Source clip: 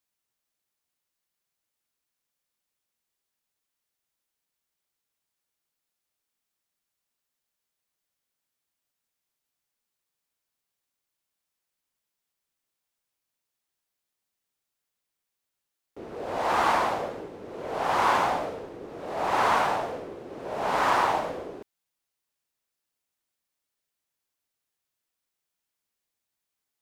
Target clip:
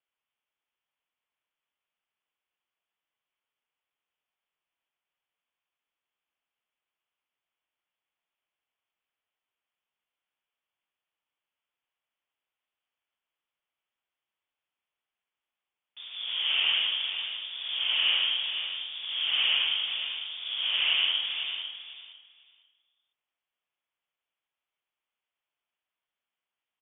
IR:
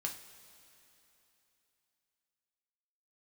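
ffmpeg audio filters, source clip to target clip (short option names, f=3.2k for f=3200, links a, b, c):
-filter_complex "[0:a]acrossover=split=470 2300:gain=0.0891 1 0.0794[a][b][c];[a][b][c]amix=inputs=3:normalize=0,asplit=2[d][e];[e]acompressor=threshold=-34dB:ratio=6,volume=2dB[f];[d][f]amix=inputs=2:normalize=0,aexciter=amount=2.8:drive=7.5:freq=3k,afreqshift=-140,asplit=2[g][h];[h]aecho=0:1:500|1000|1500:0.355|0.0639|0.0115[i];[g][i]amix=inputs=2:normalize=0,lowpass=f=3.2k:t=q:w=0.5098,lowpass=f=3.2k:t=q:w=0.6013,lowpass=f=3.2k:t=q:w=0.9,lowpass=f=3.2k:t=q:w=2.563,afreqshift=-3800,volume=-4dB"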